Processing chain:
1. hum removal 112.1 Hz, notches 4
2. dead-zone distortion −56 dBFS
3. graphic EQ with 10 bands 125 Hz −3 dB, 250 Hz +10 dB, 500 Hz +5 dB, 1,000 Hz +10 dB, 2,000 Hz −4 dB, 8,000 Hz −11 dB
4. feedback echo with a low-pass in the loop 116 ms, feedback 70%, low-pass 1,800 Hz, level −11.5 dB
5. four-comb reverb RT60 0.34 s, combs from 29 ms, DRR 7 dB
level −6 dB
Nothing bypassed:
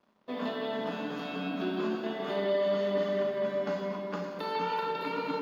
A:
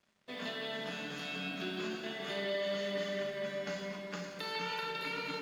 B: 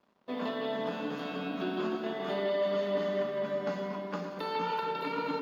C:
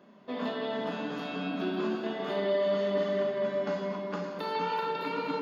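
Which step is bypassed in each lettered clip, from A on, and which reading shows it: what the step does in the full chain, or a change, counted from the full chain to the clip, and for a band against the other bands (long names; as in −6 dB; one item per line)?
3, change in momentary loudness spread −2 LU
5, echo-to-direct ratio −5.5 dB to −12.0 dB
2, distortion level −26 dB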